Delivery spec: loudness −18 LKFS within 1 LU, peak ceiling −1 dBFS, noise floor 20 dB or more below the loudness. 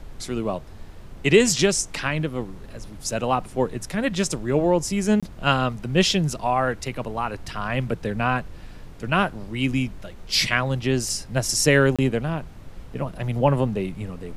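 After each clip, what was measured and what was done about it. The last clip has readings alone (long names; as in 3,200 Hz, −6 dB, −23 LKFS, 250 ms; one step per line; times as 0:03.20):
number of dropouts 2; longest dropout 26 ms; background noise floor −41 dBFS; target noise floor −43 dBFS; integrated loudness −23.0 LKFS; sample peak −2.0 dBFS; target loudness −18.0 LKFS
→ repair the gap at 0:05.20/0:11.96, 26 ms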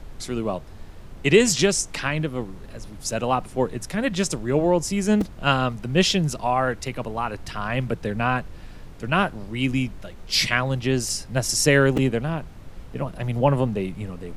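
number of dropouts 0; background noise floor −41 dBFS; target noise floor −43 dBFS
→ noise reduction from a noise print 6 dB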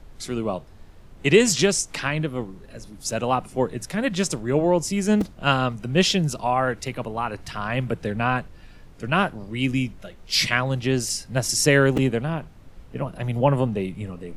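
background noise floor −46 dBFS; integrated loudness −23.0 LKFS; sample peak −2.0 dBFS; target loudness −18.0 LKFS
→ level +5 dB
brickwall limiter −1 dBFS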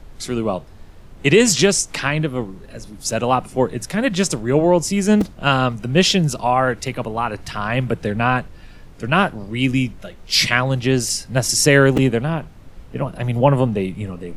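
integrated loudness −18.5 LKFS; sample peak −1.0 dBFS; background noise floor −41 dBFS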